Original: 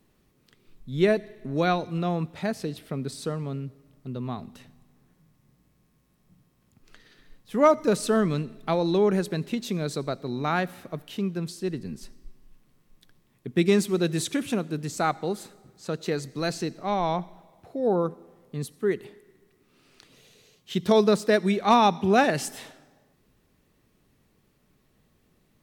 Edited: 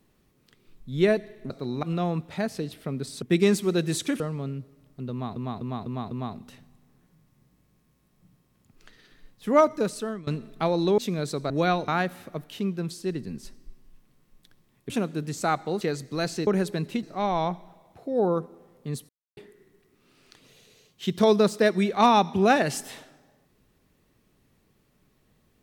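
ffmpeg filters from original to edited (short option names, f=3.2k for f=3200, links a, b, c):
-filter_complex "[0:a]asplit=19[a][b][c][d][e][f][g][h][i][j][k][l][m][n][o][p][q][r][s];[a]atrim=end=1.502[t];[b]atrim=start=10.128:end=10.462[u];[c]atrim=start=1.878:end=3.272[v];[d]atrim=start=13.478:end=14.462[w];[e]atrim=start=3.268:end=4.432[x];[f]atrim=start=4.178:end=4.432[y];[g]atrim=start=4.178:end=4.432[z];[h]atrim=start=4.178:end=4.432[aa];[i]atrim=start=4.178:end=8.34,asetpts=PTS-STARTPTS,afade=t=out:st=3.472:d=0.69:silence=0.0841395[ab];[j]atrim=start=8.34:end=9.052,asetpts=PTS-STARTPTS,afade=t=in:d=0.004:c=hsin:silence=0.0841395[ac];[k]atrim=start=9.608:end=10.132[ad];[l]atrim=start=1.498:end=1.882[ae];[m]atrim=start=10.458:end=13.482[af];[n]atrim=start=14.458:end=15.372[ag];[o]atrim=start=16.048:end=16.712[ah];[p]atrim=start=9.048:end=9.612[ai];[q]atrim=start=16.708:end=18.77,asetpts=PTS-STARTPTS,afade=t=out:st=2.058:d=0.004:c=hsin[aj];[r]atrim=start=18.77:end=19.05,asetpts=PTS-STARTPTS,volume=0[ak];[s]atrim=start=19.05,asetpts=PTS-STARTPTS,afade=t=in:d=0.004:c=hsin[al];[t][u]acrossfade=d=0.004:c1=hsin:c2=hsin[am];[am][v]acrossfade=d=0.004:c1=hsin:c2=hsin[an];[an][w]acrossfade=d=0.004:c1=hsin:c2=hsin[ao];[ao][x]acrossfade=d=0.004:c1=hsin:c2=hsin[ap];[ap][y]acrossfade=d=0.004:c1=hsin:c2=hsin[aq];[aq][z]acrossfade=d=0.004:c1=hsin:c2=hsin[ar];[ar][aa]acrossfade=d=0.004:c1=hsin:c2=hsin[as];[ab][ac]concat=n=2:v=0:a=1[at];[as][at]acrossfade=d=0.004:c1=hsin:c2=hsin[au];[au][ad]acrossfade=d=0.004:c1=hsin:c2=hsin[av];[av][ae]acrossfade=d=0.004:c1=hsin:c2=hsin[aw];[aw][af]acrossfade=d=0.004:c1=hsin:c2=hsin[ax];[ax][ag]acrossfade=d=0.004:c1=hsin:c2=hsin[ay];[ay][ah]acrossfade=d=0.004:c1=hsin:c2=hsin[az];[az][ai]acrossfade=d=0.004:c1=hsin:c2=hsin[ba];[aj][ak][al]concat=n=3:v=0:a=1[bb];[ba][bb]acrossfade=d=0.004:c1=hsin:c2=hsin"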